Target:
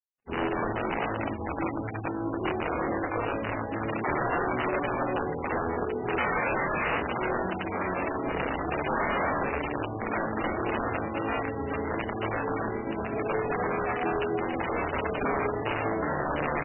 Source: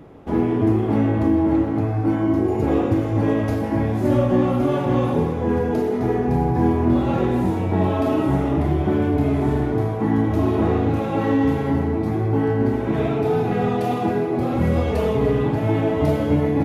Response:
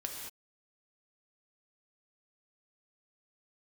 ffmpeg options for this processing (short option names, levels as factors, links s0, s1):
-filter_complex "[0:a]asettb=1/sr,asplit=3[s0][s1][s2];[s0]atrim=end=6.184[s3];[s1]atrim=start=6.18:end=6.86,asetpts=PTS-STARTPTS,afade=t=in:d=0.004:c=qsin,afade=t=out:st=0.676:d=0.004:c=qsin,equalizer=f=125:t=o:w=1:g=4,equalizer=f=250:t=o:w=1:g=8,equalizer=f=500:t=o:w=1:g=8,equalizer=f=1000:t=o:w=1:g=9,equalizer=f=4000:t=o:w=1:g=-10[s4];[s2]atrim=start=6.856[s5];[s3][s4]acrossfade=d=0.004:c1=hsin:c2=qsin[s6];[s6][s5]acrossfade=d=0.004:c1=qsin:c2=hsin,asplit=3[s7][s8][s9];[s7]afade=t=out:st=8.85:d=0.02[s10];[s8]acontrast=28,afade=t=in:st=8.85:d=0.02,afade=t=out:st=9.39:d=0.02[s11];[s9]afade=t=in:st=9.39:d=0.02[s12];[s10][s11][s12]amix=inputs=3:normalize=0,highpass=f=45:w=0.5412,highpass=f=45:w=1.3066,asplit=3[s13][s14][s15];[s13]afade=t=out:st=12.01:d=0.02[s16];[s14]aemphasis=mode=production:type=75kf,afade=t=in:st=12.01:d=0.02,afade=t=out:st=12.81:d=0.02[s17];[s15]afade=t=in:st=12.81:d=0.02[s18];[s16][s17][s18]amix=inputs=3:normalize=0[s19];[1:a]atrim=start_sample=2205,asetrate=57330,aresample=44100[s20];[s19][s20]afir=irnorm=-1:irlink=0,aeval=exprs='(mod(5.62*val(0)+1,2)-1)/5.62':c=same,acrossover=split=230[s21][s22];[s21]acompressor=threshold=0.0178:ratio=3[s23];[s23][s22]amix=inputs=2:normalize=0,alimiter=limit=0.299:level=0:latency=1:release=76,aeval=exprs='sgn(val(0))*max(abs(val(0))-0.0133,0)':c=same,asplit=2[s24][s25];[s25]adelay=27,volume=0.355[s26];[s24][s26]amix=inputs=2:normalize=0,volume=0.668" -ar 12000 -c:a libmp3lame -b:a 8k